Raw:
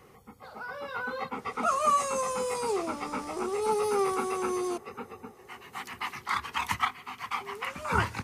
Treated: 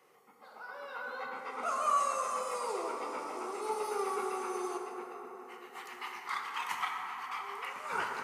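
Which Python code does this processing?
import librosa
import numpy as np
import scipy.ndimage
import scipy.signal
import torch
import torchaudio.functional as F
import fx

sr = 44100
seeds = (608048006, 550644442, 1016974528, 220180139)

y = scipy.signal.sosfilt(scipy.signal.butter(2, 400.0, 'highpass', fs=sr, output='sos'), x)
y = fx.rev_plate(y, sr, seeds[0], rt60_s=4.0, hf_ratio=0.35, predelay_ms=0, drr_db=0.0)
y = F.gain(torch.from_numpy(y), -8.0).numpy()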